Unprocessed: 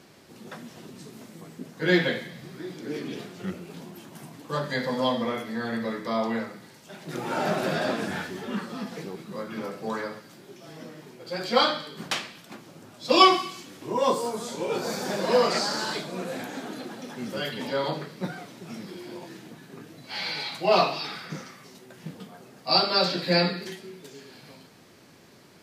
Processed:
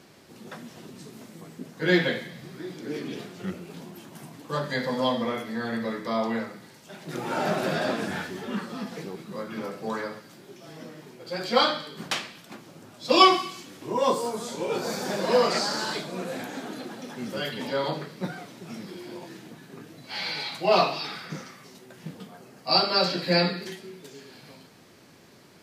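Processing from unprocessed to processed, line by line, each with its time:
0:22.38–0:23.38: notch filter 3,600 Hz

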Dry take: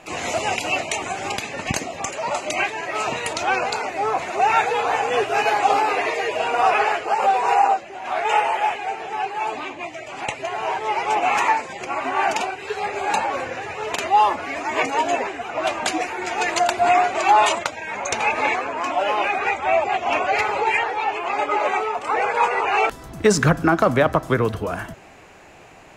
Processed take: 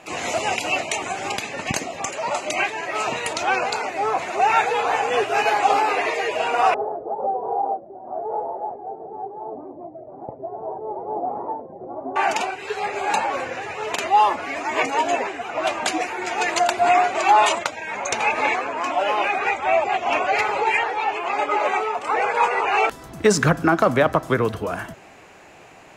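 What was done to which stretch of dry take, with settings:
0:06.74–0:12.16: inverse Chebyshev low-pass filter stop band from 3,000 Hz, stop band 70 dB
whole clip: low-shelf EQ 75 Hz −9.5 dB

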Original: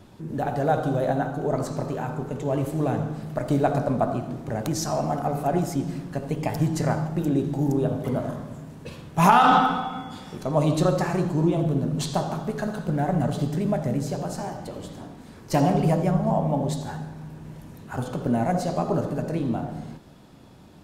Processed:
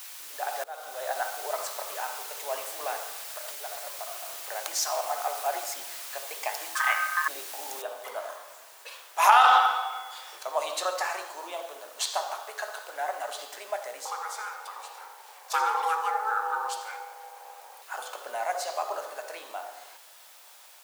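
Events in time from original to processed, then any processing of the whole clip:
0:00.64–0:01.22: fade in, from −23 dB
0:03.25–0:04.22: downward compressor 8 to 1, threshold −30 dBFS
0:06.75–0:07.28: ring modulation 1,400 Hz
0:07.82: noise floor change −43 dB −56 dB
0:10.95–0:13.04: high-pass filter 260 Hz
0:14.05–0:17.82: ring modulation 650 Hz
whole clip: Bessel high-pass filter 1,000 Hz, order 6; automatic gain control gain up to 3 dB

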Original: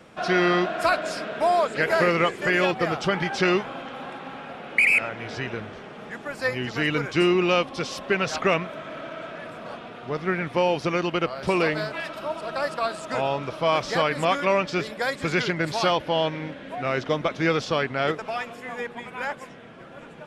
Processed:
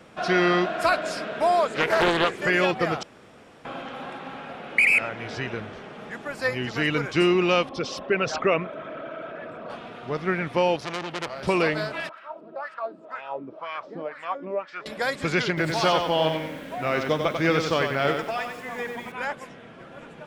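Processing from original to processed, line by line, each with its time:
0:01.69–0:02.40: highs frequency-modulated by the lows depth 0.62 ms
0:03.03–0:03.65: fill with room tone
0:07.69–0:09.70: spectral envelope exaggerated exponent 1.5
0:10.76–0:11.43: saturating transformer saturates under 3,500 Hz
0:12.09–0:14.86: LFO wah 2 Hz 260–1,900 Hz, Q 3.4
0:15.48–0:19.12: feedback echo at a low word length 94 ms, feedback 35%, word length 8 bits, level −5.5 dB

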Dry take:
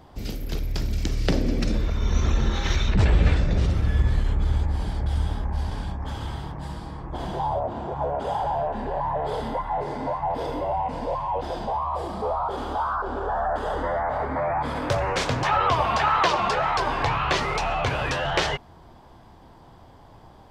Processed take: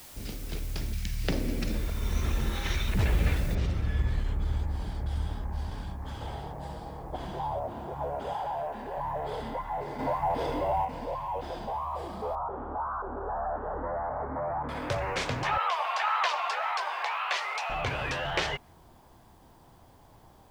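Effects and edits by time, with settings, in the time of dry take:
0:00.94–0:01.24: gain on a spectral selection 230–1,500 Hz −16 dB
0:03.55: noise floor change −42 dB −63 dB
0:06.21–0:07.16: flat-topped bell 590 Hz +8.5 dB 1.2 octaves
0:08.33–0:08.98: low-shelf EQ 180 Hz −9 dB
0:09.99–0:10.85: clip gain +5 dB
0:12.35–0:14.69: low-pass filter 1,400 Hz 24 dB per octave
0:15.58–0:17.70: high-pass filter 640 Hz 24 dB per octave
whole clip: dynamic equaliser 2,300 Hz, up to +4 dB, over −45 dBFS, Q 1.7; level −7 dB

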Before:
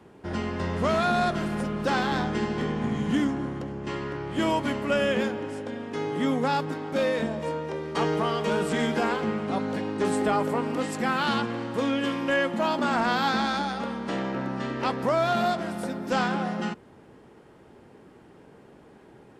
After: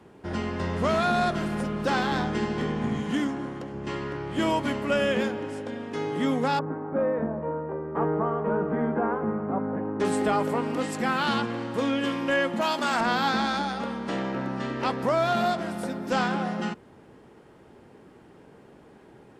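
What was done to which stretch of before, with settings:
0:03.00–0:03.74: low-shelf EQ 160 Hz −9.5 dB
0:06.59–0:10.00: low-pass filter 1,400 Hz 24 dB per octave
0:12.61–0:13.01: spectral tilt +2.5 dB per octave

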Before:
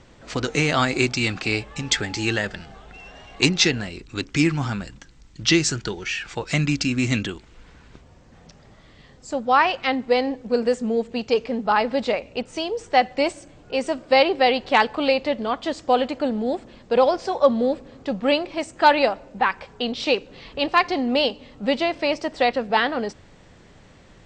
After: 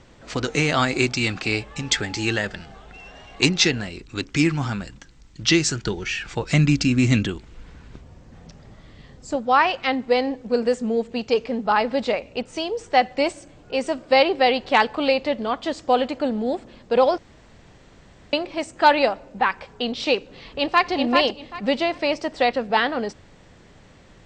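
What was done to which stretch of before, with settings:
0:05.86–0:09.36: low-shelf EQ 320 Hz +6.5 dB
0:17.18–0:18.33: fill with room tone
0:20.47–0:20.91: delay throw 390 ms, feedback 20%, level −3.5 dB

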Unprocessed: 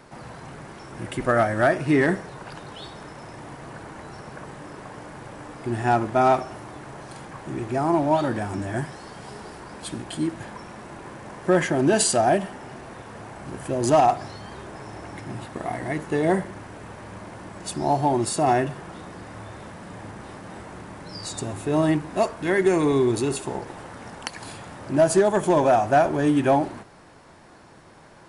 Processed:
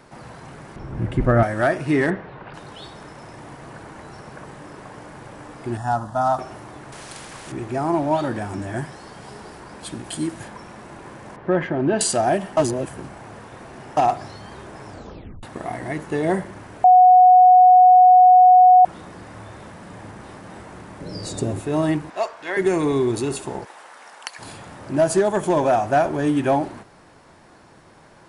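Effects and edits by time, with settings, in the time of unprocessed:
0:00.76–0:01.43: RIAA equalisation playback
0:02.10–0:02.54: low-pass filter 3,300 Hz 24 dB per octave
0:05.77–0:06.39: phaser with its sweep stopped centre 950 Hz, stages 4
0:06.92–0:07.52: every bin compressed towards the loudest bin 2 to 1
0:10.04–0:10.48: high-shelf EQ 6,100 Hz +10.5 dB
0:11.36–0:12.01: high-frequency loss of the air 350 metres
0:12.57–0:13.97: reverse
0:14.88: tape stop 0.55 s
0:16.84–0:18.85: beep over 734 Hz −7 dBFS
0:21.00–0:21.60: low shelf with overshoot 680 Hz +6.5 dB, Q 1.5
0:22.10–0:22.57: three-way crossover with the lows and the highs turned down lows −21 dB, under 480 Hz, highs −17 dB, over 7,300 Hz
0:23.65–0:24.39: high-pass filter 780 Hz

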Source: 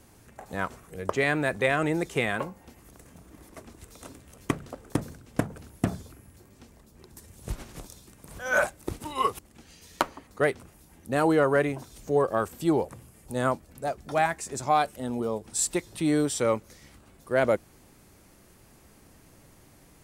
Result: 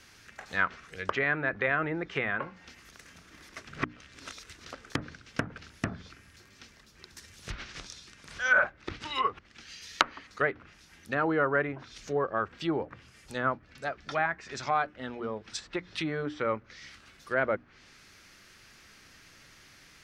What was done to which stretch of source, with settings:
0:03.69–0:04.65: reverse
0:07.55–0:09.14: low-pass filter 8,900 Hz
whole clip: treble cut that deepens with the level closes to 1,100 Hz, closed at −24 dBFS; flat-topped bell 2,800 Hz +15 dB 2.6 octaves; mains-hum notches 60/120/180/240/300 Hz; level −6 dB

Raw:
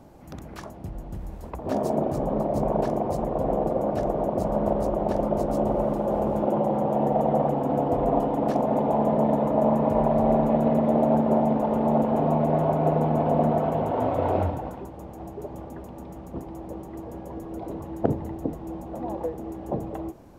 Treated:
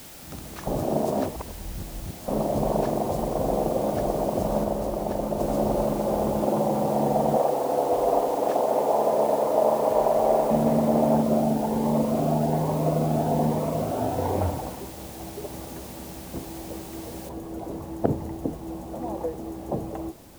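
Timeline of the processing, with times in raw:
0:00.67–0:02.28: reverse
0:04.64–0:05.40: clip gain −3 dB
0:07.36–0:10.51: low shelf with overshoot 300 Hz −11 dB, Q 1.5
0:11.23–0:14.41: phaser whose notches keep moving one way rising 1.2 Hz
0:17.29: noise floor change −45 dB −55 dB

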